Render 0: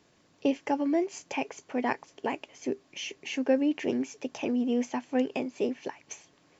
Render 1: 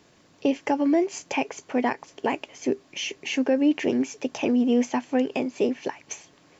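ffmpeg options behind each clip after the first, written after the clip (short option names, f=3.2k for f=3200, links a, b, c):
-af "alimiter=limit=-19dB:level=0:latency=1:release=123,volume=6.5dB"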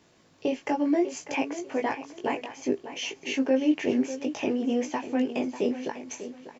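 -filter_complex "[0:a]flanger=delay=18:depth=2.4:speed=0.62,asplit=2[a][b];[b]adelay=595,lowpass=f=4k:p=1,volume=-12dB,asplit=2[c][d];[d]adelay=595,lowpass=f=4k:p=1,volume=0.27,asplit=2[e][f];[f]adelay=595,lowpass=f=4k:p=1,volume=0.27[g];[a][c][e][g]amix=inputs=4:normalize=0"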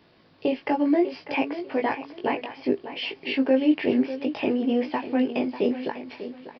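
-af "aresample=11025,aresample=44100,volume=3dB"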